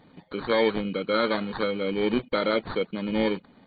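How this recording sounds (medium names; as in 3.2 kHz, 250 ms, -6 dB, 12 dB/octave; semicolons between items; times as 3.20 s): aliases and images of a low sample rate 2.7 kHz, jitter 0%; AC-3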